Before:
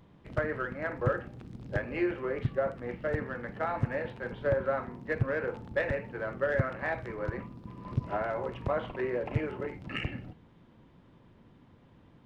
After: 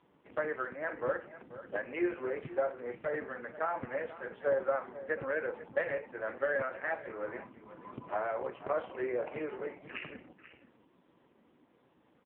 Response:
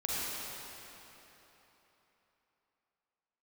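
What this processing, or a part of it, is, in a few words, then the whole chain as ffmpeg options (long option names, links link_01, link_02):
satellite phone: -filter_complex "[0:a]asplit=3[link_01][link_02][link_03];[link_01]afade=type=out:start_time=5.92:duration=0.02[link_04];[link_02]lowshelf=frequency=75:gain=-5.5,afade=type=in:start_time=5.92:duration=0.02,afade=type=out:start_time=7.35:duration=0.02[link_05];[link_03]afade=type=in:start_time=7.35:duration=0.02[link_06];[link_04][link_05][link_06]amix=inputs=3:normalize=0,highpass=310,lowpass=3400,aecho=1:1:489:0.178" -ar 8000 -c:a libopencore_amrnb -b:a 5150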